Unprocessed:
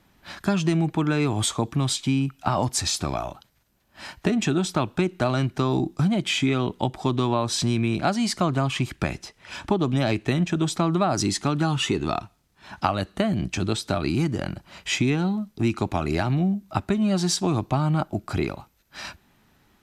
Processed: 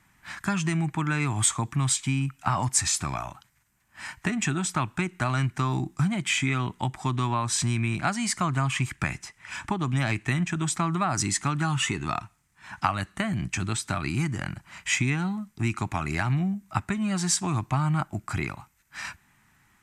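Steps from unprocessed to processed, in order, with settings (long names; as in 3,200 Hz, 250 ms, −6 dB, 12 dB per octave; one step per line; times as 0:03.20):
graphic EQ with 10 bands 125 Hz +6 dB, 500 Hz −10 dB, 1,000 Hz +6 dB, 2,000 Hz +10 dB, 4,000 Hz −5 dB, 8,000 Hz +12 dB
level −6 dB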